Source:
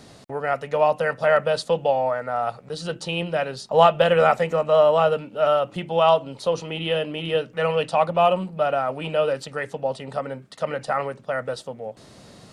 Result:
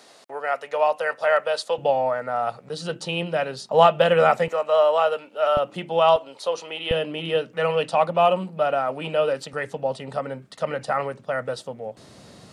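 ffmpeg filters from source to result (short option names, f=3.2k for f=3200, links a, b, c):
-af "asetnsamples=n=441:p=0,asendcmd='1.78 highpass f 120;4.48 highpass f 510;5.57 highpass f 190;6.16 highpass f 490;6.91 highpass f 150;9.53 highpass f 52',highpass=520"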